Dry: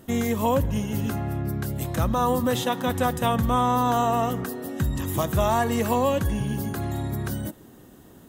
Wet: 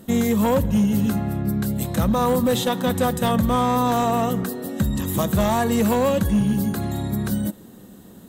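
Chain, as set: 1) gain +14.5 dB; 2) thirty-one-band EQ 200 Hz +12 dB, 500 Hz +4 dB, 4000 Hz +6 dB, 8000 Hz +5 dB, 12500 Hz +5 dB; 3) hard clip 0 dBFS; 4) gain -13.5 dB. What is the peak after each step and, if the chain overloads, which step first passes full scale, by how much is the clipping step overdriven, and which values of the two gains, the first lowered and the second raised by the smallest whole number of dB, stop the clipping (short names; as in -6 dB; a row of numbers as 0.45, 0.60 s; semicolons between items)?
+3.5, +6.5, 0.0, -13.5 dBFS; step 1, 6.5 dB; step 1 +7.5 dB, step 4 -6.5 dB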